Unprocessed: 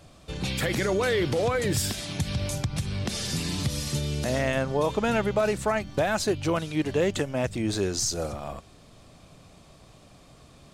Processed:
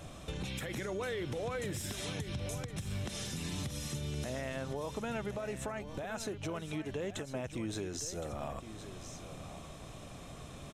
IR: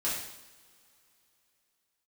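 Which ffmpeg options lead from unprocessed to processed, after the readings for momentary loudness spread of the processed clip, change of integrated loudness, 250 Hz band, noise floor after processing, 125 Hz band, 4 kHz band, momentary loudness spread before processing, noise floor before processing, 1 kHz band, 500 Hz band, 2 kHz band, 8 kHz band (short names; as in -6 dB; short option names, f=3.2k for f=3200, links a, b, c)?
10 LU, -12.5 dB, -11.0 dB, -49 dBFS, -10.0 dB, -11.5 dB, 6 LU, -53 dBFS, -12.5 dB, -12.5 dB, -12.0 dB, -10.5 dB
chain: -af "acompressor=threshold=-37dB:ratio=6,alimiter=level_in=8.5dB:limit=-24dB:level=0:latency=1:release=343,volume=-8.5dB,bandreject=f=4.6k:w=5,aresample=32000,aresample=44100,aecho=1:1:1066:0.266,volume=4dB"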